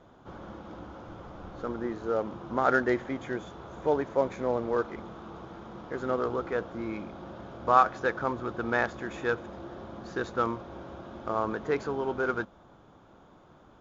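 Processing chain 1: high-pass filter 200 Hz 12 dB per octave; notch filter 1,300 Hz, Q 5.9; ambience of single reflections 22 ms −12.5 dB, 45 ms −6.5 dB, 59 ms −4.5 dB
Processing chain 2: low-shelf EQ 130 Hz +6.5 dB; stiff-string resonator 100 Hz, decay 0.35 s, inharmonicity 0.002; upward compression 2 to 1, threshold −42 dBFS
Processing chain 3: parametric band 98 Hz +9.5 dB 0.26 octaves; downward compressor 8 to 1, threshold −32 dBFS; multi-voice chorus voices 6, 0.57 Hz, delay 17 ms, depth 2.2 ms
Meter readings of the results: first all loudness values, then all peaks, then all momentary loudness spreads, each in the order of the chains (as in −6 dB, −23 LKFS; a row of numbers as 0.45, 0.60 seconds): −29.5, −42.0, −41.5 LKFS; −9.0, −18.0, −23.0 dBFS; 18, 14, 8 LU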